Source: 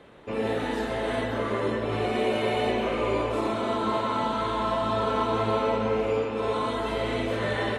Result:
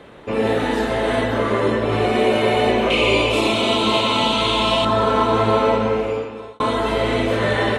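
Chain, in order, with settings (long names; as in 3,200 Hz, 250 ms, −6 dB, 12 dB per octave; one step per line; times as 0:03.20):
0:02.90–0:04.85: high shelf with overshoot 2,100 Hz +7.5 dB, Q 3
0:05.70–0:06.60: fade out
level +8.5 dB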